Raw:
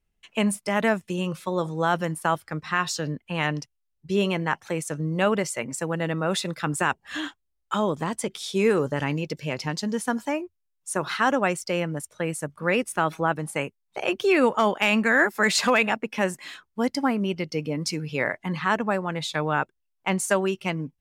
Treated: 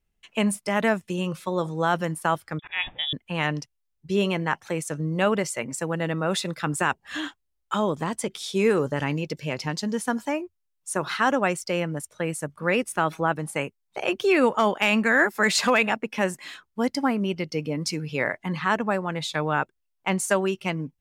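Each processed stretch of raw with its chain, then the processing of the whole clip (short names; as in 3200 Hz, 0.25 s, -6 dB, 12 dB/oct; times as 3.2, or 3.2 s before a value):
2.59–3.13 inverted band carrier 3600 Hz + low-pass opened by the level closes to 1900 Hz, open at -24.5 dBFS + auto swell 0.171 s
whole clip: dry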